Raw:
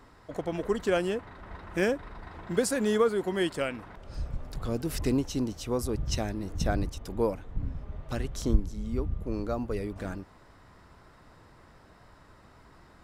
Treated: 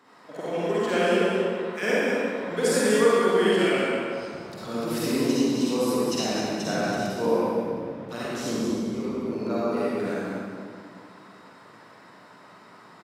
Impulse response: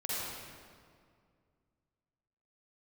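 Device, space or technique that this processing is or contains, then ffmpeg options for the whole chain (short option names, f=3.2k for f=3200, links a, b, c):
PA in a hall: -filter_complex "[0:a]asettb=1/sr,asplit=3[a][b][c];[a]atrim=end=1.364[d];[b]atrim=start=1.36:end=1.83,asetpts=PTS-STARTPTS,afade=t=in:d=0.004:c=qsin,afade=t=out:st=0.466:d=0.004:c=qsin,highpass=960[e];[c]atrim=start=1.826[f];[d][e]acrossfade=d=0.004:c1=hsin:c2=qsin[g];[g][f]acrossfade=d=0.004:c1=qsin:c2=hsin,highpass=f=170:w=0.5412,highpass=f=170:w=1.3066,equalizer=f=2.8k:t=o:w=2.9:g=4,aecho=1:1:188:0.447[h];[1:a]atrim=start_sample=2205[i];[h][i]afir=irnorm=-1:irlink=0"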